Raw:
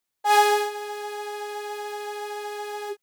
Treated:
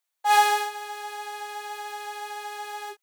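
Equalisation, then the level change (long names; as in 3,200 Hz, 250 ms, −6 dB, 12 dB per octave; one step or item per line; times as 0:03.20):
high-pass filter 550 Hz 24 dB per octave
notch filter 5,100 Hz, Q 19
0.0 dB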